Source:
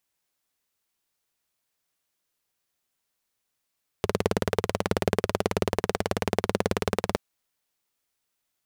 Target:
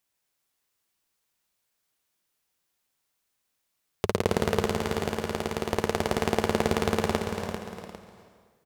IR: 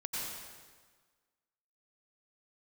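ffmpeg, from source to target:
-filter_complex "[0:a]asettb=1/sr,asplit=3[link_01][link_02][link_03];[link_01]atrim=end=4.684[link_04];[link_02]atrim=start=4.68:end=5.71,asetpts=PTS-STARTPTS,afade=type=in:duration=0.004:curve=qsin,afade=type=out:start_time=1.026:duration=0.004:curve=qsin,acompressor=threshold=-25dB:ratio=6[link_05];[link_03]atrim=start=5.706[link_06];[link_04][link_05]acrossfade=duration=0.004:curve1=hsin:curve2=qsin[link_07];[link_07][link_06]acrossfade=duration=0.004:curve1=qsin:curve2=hsin,aecho=1:1:63|395|799:0.251|0.398|0.141,asplit=2[link_08][link_09];[1:a]atrim=start_sample=2205,adelay=141[link_10];[link_09][link_10]afir=irnorm=-1:irlink=0,volume=-10dB[link_11];[link_08][link_11]amix=inputs=2:normalize=0"

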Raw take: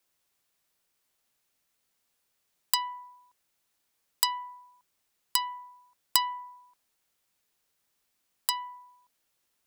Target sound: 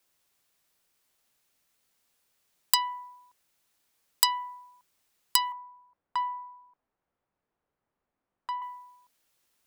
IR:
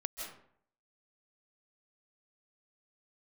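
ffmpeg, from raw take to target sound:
-filter_complex "[0:a]asettb=1/sr,asplit=3[link_01][link_02][link_03];[link_01]atrim=end=5.524[link_04];[link_02]atrim=start=5.52:end=8.62,asetpts=PTS-STARTPTS,afade=type=in:duration=0.004:curve=qsin,afade=type=out:start_time=3.096:duration=0.004:curve=qsin,lowpass=1100[link_05];[link_03]atrim=start=8.616[link_06];[link_04][link_05]acrossfade=duration=0.004:curve1=hsin:curve2=qsin[link_07];[link_07][link_06]acrossfade=duration=0.004:curve1=qsin:curve2=hsin,volume=3dB"

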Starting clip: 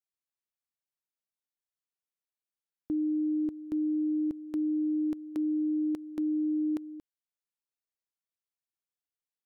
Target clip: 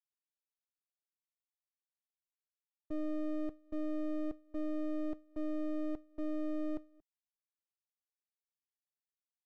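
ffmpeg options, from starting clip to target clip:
ffmpeg -i in.wav -filter_complex "[0:a]asplit=2[link_01][link_02];[link_02]acompressor=threshold=-40dB:ratio=6,volume=2dB[link_03];[link_01][link_03]amix=inputs=2:normalize=0,asuperpass=centerf=340:order=12:qfactor=0.6,agate=range=-33dB:threshold=-25dB:ratio=3:detection=peak,aeval=exprs='max(val(0),0)':channel_layout=same,volume=-4.5dB" out.wav

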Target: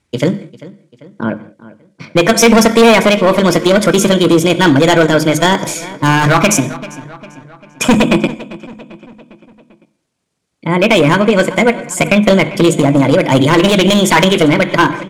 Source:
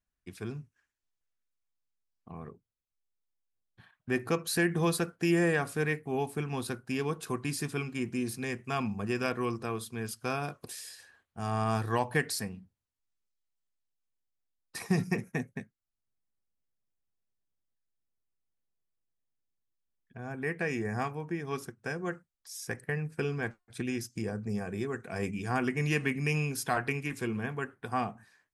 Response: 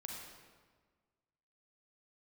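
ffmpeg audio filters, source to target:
-filter_complex "[0:a]highpass=67,asetrate=59535,aresample=44100,lowpass=frequency=9700:width=0.5412,lowpass=frequency=9700:width=1.3066,lowshelf=frequency=460:gain=4,asplit=2[link_01][link_02];[1:a]atrim=start_sample=2205,afade=type=out:start_time=0.32:duration=0.01,atrim=end_sample=14553,adelay=23[link_03];[link_02][link_03]afir=irnorm=-1:irlink=0,volume=-10.5dB[link_04];[link_01][link_04]amix=inputs=2:normalize=0,volume=27dB,asoftclip=hard,volume=-27dB,bandreject=frequency=50:width_type=h:width=6,bandreject=frequency=100:width_type=h:width=6,bandreject=frequency=150:width_type=h:width=6,bandreject=frequency=200:width_type=h:width=6,bandreject=frequency=250:width_type=h:width=6,bandreject=frequency=300:width_type=h:width=6,bandreject=frequency=350:width_type=h:width=6,asplit=2[link_05][link_06];[link_06]adelay=552,lowpass=frequency=4600:poles=1,volume=-19dB,asplit=2[link_07][link_08];[link_08]adelay=552,lowpass=frequency=4600:poles=1,volume=0.53,asplit=2[link_09][link_10];[link_10]adelay=552,lowpass=frequency=4600:poles=1,volume=0.53,asplit=2[link_11][link_12];[link_12]adelay=552,lowpass=frequency=4600:poles=1,volume=0.53[link_13];[link_05][link_07][link_09][link_11][link_13]amix=inputs=5:normalize=0,atempo=1.4,alimiter=level_in=26.5dB:limit=-1dB:release=50:level=0:latency=1,volume=-1dB"

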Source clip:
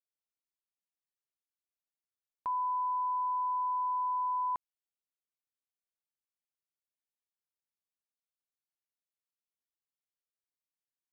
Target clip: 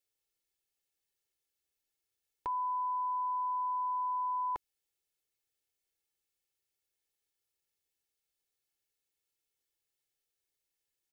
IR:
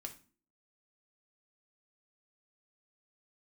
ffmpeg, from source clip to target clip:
-af "equalizer=frequency=1100:width_type=o:width=0.77:gain=-10.5,aecho=1:1:2.3:0.65,volume=7dB"

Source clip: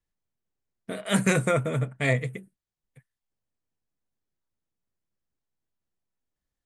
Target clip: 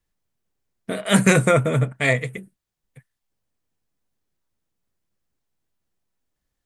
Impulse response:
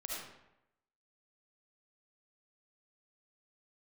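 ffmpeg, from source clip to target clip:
-filter_complex "[0:a]asettb=1/sr,asplit=3[link_01][link_02][link_03];[link_01]atrim=end=1.924[link_04];[link_02]atrim=start=1.92:end=2.38,asetpts=PTS-STARTPTS,afade=type=in:duration=0.004:curve=qsin,afade=type=out:start_time=0.456:duration=0.004:curve=qsin,lowshelf=frequency=420:gain=-6.5[link_05];[link_03]atrim=start=2.376[link_06];[link_04][link_05]acrossfade=duration=0.004:curve1=hsin:curve2=qsin[link_07];[link_07][link_06]acrossfade=duration=0.004:curve1=qsin:curve2=hsin,volume=7dB"

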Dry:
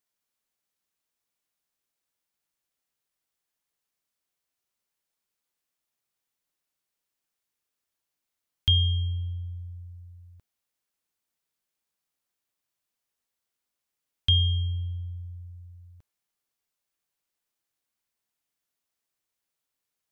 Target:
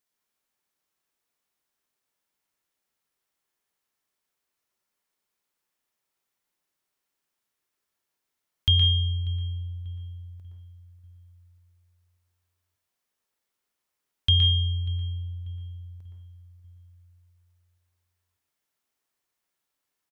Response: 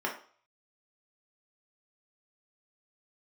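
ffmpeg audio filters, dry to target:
-filter_complex "[0:a]asplit=2[link_01][link_02];[link_02]adelay=590,lowpass=frequency=1400:poles=1,volume=-17.5dB,asplit=2[link_03][link_04];[link_04]adelay=590,lowpass=frequency=1400:poles=1,volume=0.52,asplit=2[link_05][link_06];[link_06]adelay=590,lowpass=frequency=1400:poles=1,volume=0.52,asplit=2[link_07][link_08];[link_08]adelay=590,lowpass=frequency=1400:poles=1,volume=0.52[link_09];[link_01][link_03][link_05][link_07][link_09]amix=inputs=5:normalize=0,asplit=2[link_10][link_11];[1:a]atrim=start_sample=2205,adelay=117[link_12];[link_11][link_12]afir=irnorm=-1:irlink=0,volume=-7dB[link_13];[link_10][link_13]amix=inputs=2:normalize=0,volume=1dB"

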